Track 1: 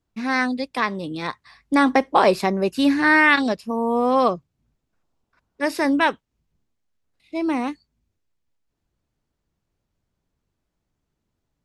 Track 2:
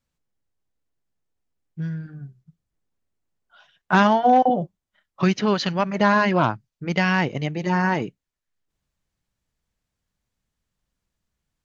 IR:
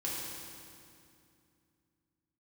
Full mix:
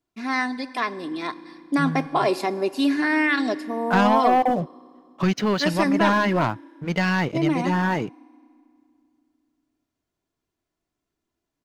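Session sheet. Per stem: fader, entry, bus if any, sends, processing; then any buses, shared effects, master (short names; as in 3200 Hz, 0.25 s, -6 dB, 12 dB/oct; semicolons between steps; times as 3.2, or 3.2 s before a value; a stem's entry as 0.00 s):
-4.0 dB, 0.00 s, send -17.5 dB, HPF 160 Hz 12 dB/oct; comb 2.9 ms, depth 52%; limiter -8 dBFS, peak gain reduction 6 dB
-7.5 dB, 0.00 s, no send, sample leveller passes 2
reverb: on, RT60 2.5 s, pre-delay 3 ms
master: dry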